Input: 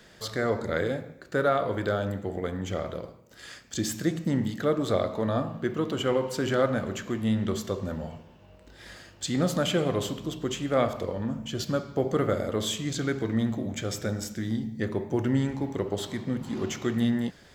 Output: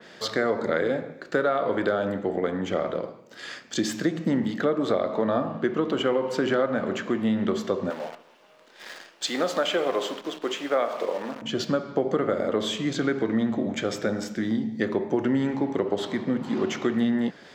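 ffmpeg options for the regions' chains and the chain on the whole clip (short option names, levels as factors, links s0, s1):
-filter_complex "[0:a]asettb=1/sr,asplit=3[s0][s1][s2];[s0]atrim=end=7.904[s3];[s1]atrim=start=7.9:end=11.42,asetpts=PTS-STARTPTS,afade=t=in:d=0.004:c=qsin,afade=t=out:st=3.516:d=0.004:c=qsin,highpass=440,acrusher=bits=8:dc=4:mix=0:aa=0.000001[s4];[s2]atrim=start=11.416[s5];[s3][s4]acrossfade=d=0.004:c1=hsin:c2=qsin[s6];[s6][s5]acrossfade=d=0.004:c1=qsin:c2=hsin,acrossover=split=170 6100:gain=0.0794 1 0.224[s7][s8][s9];[s7][s8][s9]amix=inputs=3:normalize=0,acompressor=threshold=0.0447:ratio=6,adynamicequalizer=threshold=0.00251:dfrequency=2500:dqfactor=0.7:tfrequency=2500:tqfactor=0.7:attack=5:release=100:ratio=0.375:range=3:mode=cutabove:tftype=highshelf,volume=2.37"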